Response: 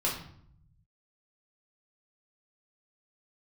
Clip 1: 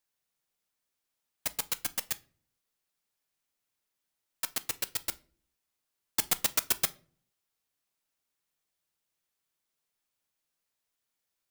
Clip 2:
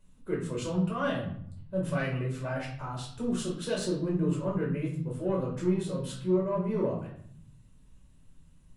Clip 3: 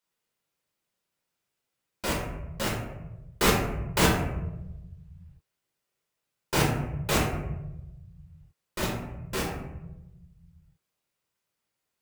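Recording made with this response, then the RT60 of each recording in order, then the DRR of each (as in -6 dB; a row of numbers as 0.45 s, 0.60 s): 2; no single decay rate, 0.65 s, 1.0 s; 12.5 dB, -4.0 dB, -4.0 dB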